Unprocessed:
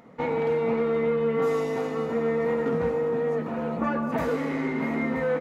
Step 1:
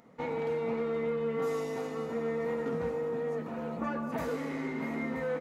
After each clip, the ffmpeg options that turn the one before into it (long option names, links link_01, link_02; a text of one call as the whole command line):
ffmpeg -i in.wav -af "bass=frequency=250:gain=0,treble=frequency=4000:gain=6,volume=-7.5dB" out.wav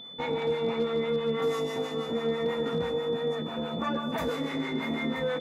ffmpeg -i in.wav -filter_complex "[0:a]acrossover=split=670[link_01][link_02];[link_01]aeval=exprs='val(0)*(1-0.7/2+0.7/2*cos(2*PI*6.1*n/s))':channel_layout=same[link_03];[link_02]aeval=exprs='val(0)*(1-0.7/2-0.7/2*cos(2*PI*6.1*n/s))':channel_layout=same[link_04];[link_03][link_04]amix=inputs=2:normalize=0,aeval=exprs='val(0)+0.00355*sin(2*PI*3500*n/s)':channel_layout=same,asoftclip=type=hard:threshold=-27.5dB,volume=7dB" out.wav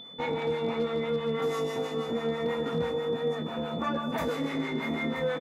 ffmpeg -i in.wav -filter_complex "[0:a]asplit=2[link_01][link_02];[link_02]adelay=25,volume=-11.5dB[link_03];[link_01][link_03]amix=inputs=2:normalize=0" out.wav